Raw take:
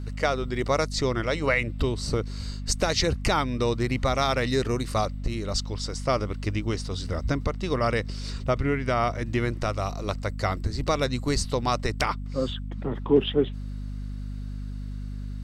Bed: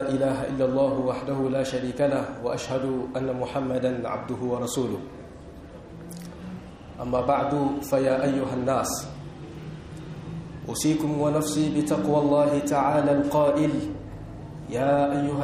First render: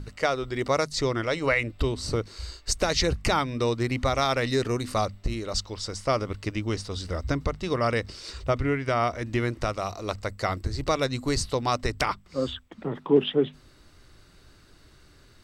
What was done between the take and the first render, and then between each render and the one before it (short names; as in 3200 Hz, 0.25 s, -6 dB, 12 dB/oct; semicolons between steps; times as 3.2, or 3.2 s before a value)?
notches 50/100/150/200/250 Hz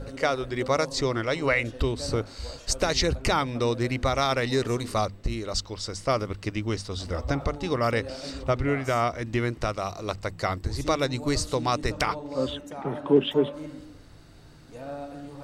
add bed -15.5 dB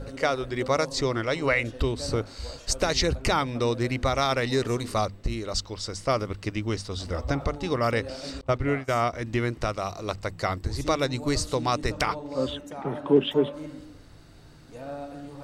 8.41–9.13 expander -26 dBFS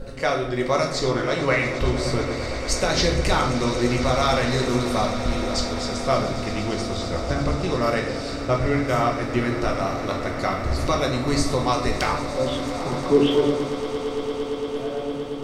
swelling echo 0.114 s, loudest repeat 8, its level -17 dB; shoebox room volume 190 m³, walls mixed, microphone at 1 m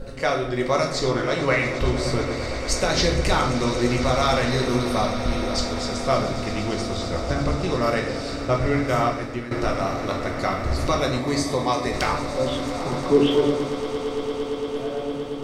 4.51–5.58 notch 7300 Hz, Q 5.2; 9.04–9.51 fade out, to -13 dB; 11.19–11.94 notch comb 1400 Hz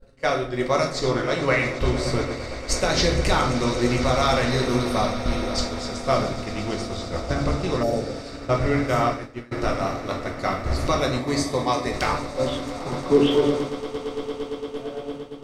expander -22 dBFS; 7.85–8.17 spectral repair 920–5400 Hz after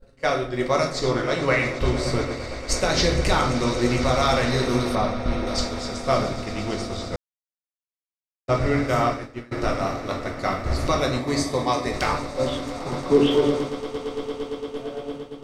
4.95–5.47 high shelf 4100 Hz -11 dB; 7.16–8.48 mute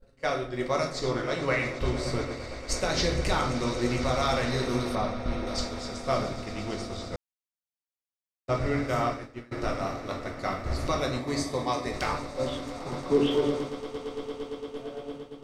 gain -6 dB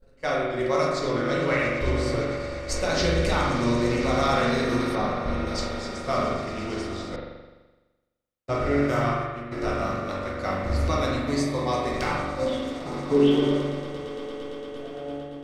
spring tank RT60 1.2 s, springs 42 ms, chirp 65 ms, DRR -1.5 dB